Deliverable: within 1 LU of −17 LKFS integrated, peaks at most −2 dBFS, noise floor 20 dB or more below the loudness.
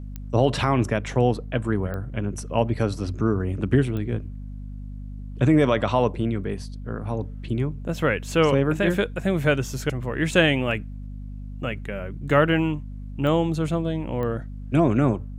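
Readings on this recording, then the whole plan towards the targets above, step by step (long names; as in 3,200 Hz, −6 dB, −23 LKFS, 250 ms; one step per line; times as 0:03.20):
number of clicks 5; mains hum 50 Hz; hum harmonics up to 250 Hz; level of the hum −32 dBFS; integrated loudness −24.0 LKFS; sample peak −4.0 dBFS; target loudness −17.0 LKFS
→ click removal
hum removal 50 Hz, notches 5
level +7 dB
brickwall limiter −2 dBFS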